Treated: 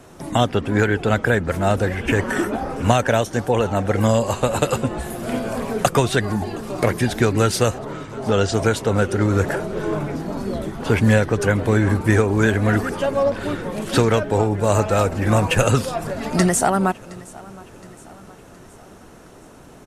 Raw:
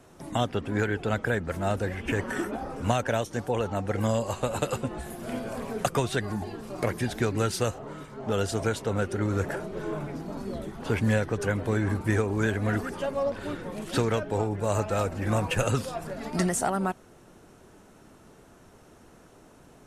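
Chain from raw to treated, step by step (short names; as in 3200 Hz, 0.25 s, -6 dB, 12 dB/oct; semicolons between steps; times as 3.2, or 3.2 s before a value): 7.9–8.54 LPF 7300 Hz 24 dB/oct; feedback echo 0.718 s, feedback 52%, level -22 dB; gain +9 dB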